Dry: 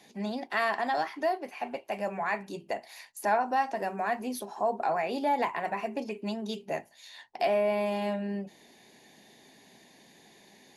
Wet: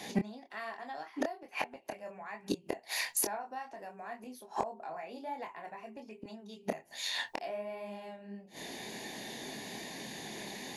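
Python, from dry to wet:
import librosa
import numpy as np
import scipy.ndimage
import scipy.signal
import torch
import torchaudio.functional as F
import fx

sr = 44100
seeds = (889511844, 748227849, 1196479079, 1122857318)

y = fx.gate_flip(x, sr, shuts_db=-31.0, range_db=-27)
y = np.clip(10.0 ** (32.0 / 20.0) * y, -1.0, 1.0) / 10.0 ** (32.0 / 20.0)
y = fx.chorus_voices(y, sr, voices=2, hz=1.2, base_ms=25, depth_ms=3.0, mix_pct=35)
y = F.gain(torch.from_numpy(y), 16.0).numpy()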